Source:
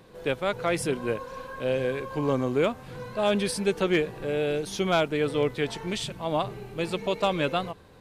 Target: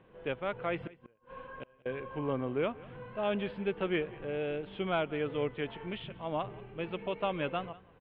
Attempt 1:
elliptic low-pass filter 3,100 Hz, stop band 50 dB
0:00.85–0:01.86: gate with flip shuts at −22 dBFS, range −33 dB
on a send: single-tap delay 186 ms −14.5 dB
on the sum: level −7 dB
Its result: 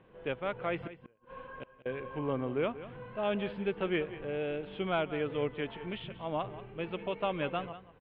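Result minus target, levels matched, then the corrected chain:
echo-to-direct +6.5 dB
elliptic low-pass filter 3,100 Hz, stop band 50 dB
0:00.85–0:01.86: gate with flip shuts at −22 dBFS, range −33 dB
on a send: single-tap delay 186 ms −21 dB
on the sum: level −7 dB

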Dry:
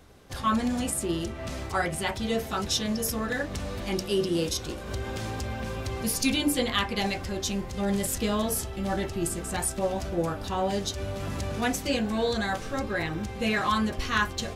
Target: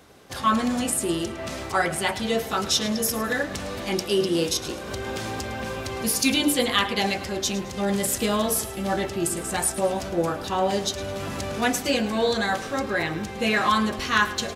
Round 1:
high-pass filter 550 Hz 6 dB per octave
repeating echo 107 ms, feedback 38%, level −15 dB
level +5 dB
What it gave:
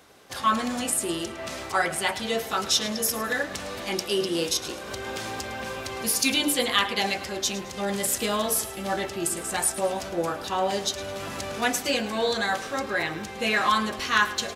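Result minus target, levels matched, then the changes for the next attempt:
250 Hz band −4.0 dB
change: high-pass filter 210 Hz 6 dB per octave

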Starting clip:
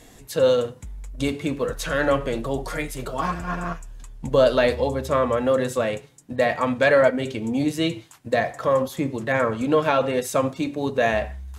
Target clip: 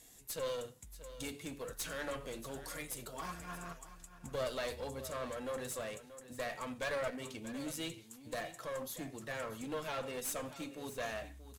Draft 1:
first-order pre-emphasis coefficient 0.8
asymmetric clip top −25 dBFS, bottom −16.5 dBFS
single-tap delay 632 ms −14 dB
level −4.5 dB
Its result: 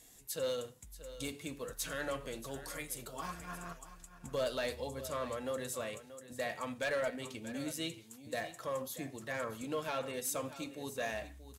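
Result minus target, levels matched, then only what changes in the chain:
asymmetric clip: distortion −10 dB
change: asymmetric clip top −36 dBFS, bottom −16.5 dBFS

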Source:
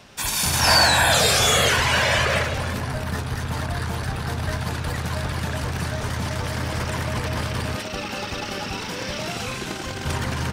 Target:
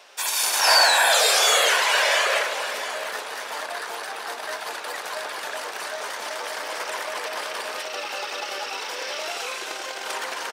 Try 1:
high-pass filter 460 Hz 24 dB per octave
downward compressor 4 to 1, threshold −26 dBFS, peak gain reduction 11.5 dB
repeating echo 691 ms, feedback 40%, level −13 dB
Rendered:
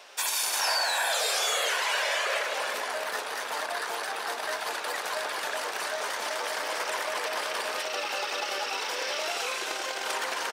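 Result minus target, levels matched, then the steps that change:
downward compressor: peak gain reduction +11.5 dB
remove: downward compressor 4 to 1, threshold −26 dBFS, peak gain reduction 11.5 dB

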